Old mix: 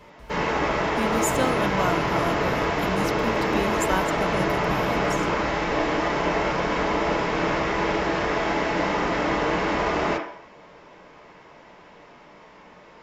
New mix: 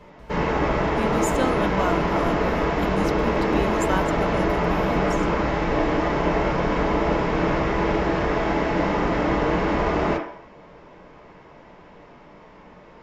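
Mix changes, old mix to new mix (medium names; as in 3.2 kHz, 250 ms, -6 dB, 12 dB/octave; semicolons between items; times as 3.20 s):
speech: add treble shelf 8.2 kHz -9.5 dB; first sound: add tilt EQ -2 dB/octave; second sound: add band-pass filter 2 kHz, Q 0.5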